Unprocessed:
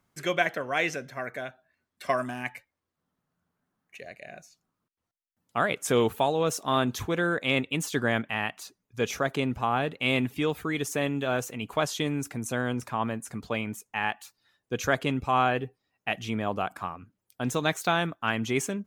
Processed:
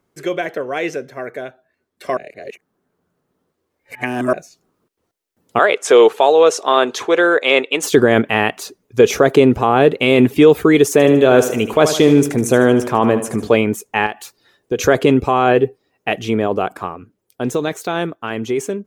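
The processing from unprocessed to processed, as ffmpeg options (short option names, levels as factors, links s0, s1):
-filter_complex "[0:a]asettb=1/sr,asplit=3[s0][s1][s2];[s0]atrim=end=5.594[s3];[s1]atrim=start=5.59:end=7.83,asetpts=PTS-STARTPTS,afade=t=in:d=0.004:c=qsin,afade=t=out:st=2.236:d=0.004:c=qsin,highpass=590,lowpass=6800[s4];[s2]atrim=start=7.826[s5];[s3][s4]acrossfade=d=0.004:c1=hsin:c2=qsin[s6];[s6][s5]acrossfade=d=0.004:c1=qsin:c2=hsin,asettb=1/sr,asplit=3[s7][s8][s9];[s7]atrim=end=10.924[s10];[s8]atrim=start=10.92:end=13.55,asetpts=PTS-STARTPTS,afade=t=in:d=0.004:c=qsin,afade=t=out:st=2.626:d=0.004:c=qsin,aecho=1:1:76|152|228|304|380:0.251|0.118|0.0555|0.0261|0.0123,atrim=end_sample=115983[s11];[s9]atrim=start=13.546[s12];[s10][s11]acrossfade=d=0.004:c1=hsin:c2=qsin[s13];[s13][s12]acrossfade=d=0.004:c1=qsin:c2=hsin,asettb=1/sr,asplit=3[s14][s15][s16];[s14]atrim=end=14.064[s17];[s15]atrim=start=14.06:end=14.79,asetpts=PTS-STARTPTS,afade=t=in:d=0.004:c=qsin,afade=t=out:st=0.726:d=0.004:c=qsin,acompressor=threshold=0.0158:ratio=3:attack=3.2:release=140:knee=1:detection=peak[s18];[s16]atrim=start=14.786[s19];[s17][s18]acrossfade=d=0.004:c1=hsin:c2=qsin[s20];[s20][s19]acrossfade=d=0.004:c1=qsin:c2=hsin,asplit=3[s21][s22][s23];[s21]atrim=end=2.172[s24];[s22]atrim=start=2.168:end=4.332,asetpts=PTS-STARTPTS,areverse[s25];[s23]atrim=start=4.328[s26];[s24][s25]acrossfade=d=0.004:c1=hsin:c2=hsin[s27];[s27][s26]acrossfade=d=0.004:c1=hsin:c2=hsin,equalizer=f=410:t=o:w=1:g=12.5,alimiter=limit=0.211:level=0:latency=1:release=19,dynaudnorm=f=550:g=13:m=3.76,volume=1.26"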